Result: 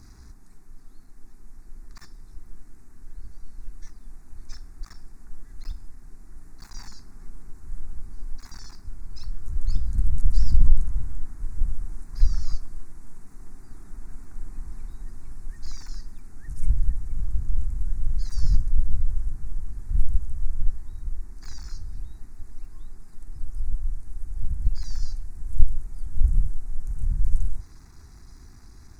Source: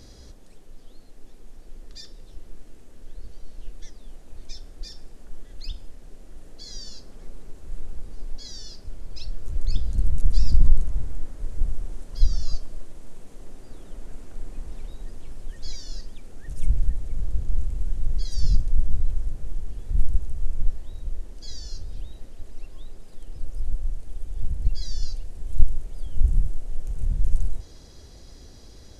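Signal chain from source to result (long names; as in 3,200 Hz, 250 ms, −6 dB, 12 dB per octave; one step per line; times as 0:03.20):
gap after every zero crossing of 0.16 ms
phaser with its sweep stopped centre 1,300 Hz, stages 4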